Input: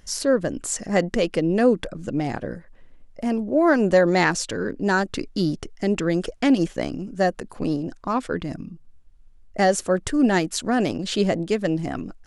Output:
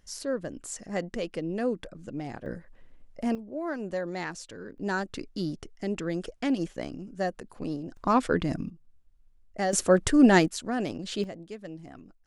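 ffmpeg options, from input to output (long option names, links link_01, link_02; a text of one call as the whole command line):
ffmpeg -i in.wav -af "asetnsamples=nb_out_samples=441:pad=0,asendcmd='2.46 volume volume -4dB;3.35 volume volume -15.5dB;4.78 volume volume -9dB;7.97 volume volume 1dB;8.7 volume volume -9.5dB;9.73 volume volume 1dB;10.48 volume volume -8.5dB;11.24 volume volume -18dB',volume=-11dB" out.wav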